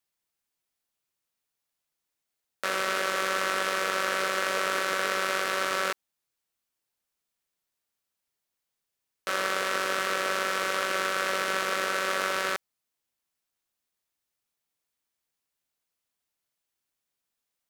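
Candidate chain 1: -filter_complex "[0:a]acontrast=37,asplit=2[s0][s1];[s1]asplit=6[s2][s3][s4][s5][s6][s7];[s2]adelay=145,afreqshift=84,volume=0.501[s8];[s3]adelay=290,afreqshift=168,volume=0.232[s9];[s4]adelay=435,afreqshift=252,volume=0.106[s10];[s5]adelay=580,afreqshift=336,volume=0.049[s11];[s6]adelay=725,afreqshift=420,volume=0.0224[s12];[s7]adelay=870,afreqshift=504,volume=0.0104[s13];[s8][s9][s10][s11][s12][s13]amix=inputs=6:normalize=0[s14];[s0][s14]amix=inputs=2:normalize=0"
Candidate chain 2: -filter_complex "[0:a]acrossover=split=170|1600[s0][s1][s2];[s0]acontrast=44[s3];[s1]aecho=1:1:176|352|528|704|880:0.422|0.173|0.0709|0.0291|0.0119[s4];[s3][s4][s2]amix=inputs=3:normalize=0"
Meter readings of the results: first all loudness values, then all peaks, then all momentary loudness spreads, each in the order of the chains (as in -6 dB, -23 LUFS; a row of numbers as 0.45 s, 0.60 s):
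-21.0 LUFS, -27.0 LUFS; -5.0 dBFS, -12.5 dBFS; 7 LU, 5 LU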